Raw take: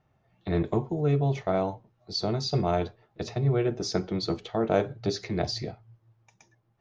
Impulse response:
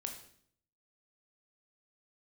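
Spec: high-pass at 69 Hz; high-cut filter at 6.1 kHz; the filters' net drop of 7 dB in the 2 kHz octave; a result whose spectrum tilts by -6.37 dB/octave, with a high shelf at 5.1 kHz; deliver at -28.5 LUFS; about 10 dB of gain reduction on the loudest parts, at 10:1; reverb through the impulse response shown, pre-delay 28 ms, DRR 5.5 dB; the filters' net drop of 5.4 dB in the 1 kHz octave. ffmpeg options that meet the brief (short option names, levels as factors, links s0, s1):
-filter_complex "[0:a]highpass=69,lowpass=6100,equalizer=f=1000:t=o:g=-8,equalizer=f=2000:t=o:g=-5.5,highshelf=f=5100:g=-5,acompressor=threshold=0.0282:ratio=10,asplit=2[s0][s1];[1:a]atrim=start_sample=2205,adelay=28[s2];[s1][s2]afir=irnorm=-1:irlink=0,volume=0.631[s3];[s0][s3]amix=inputs=2:normalize=0,volume=2.37"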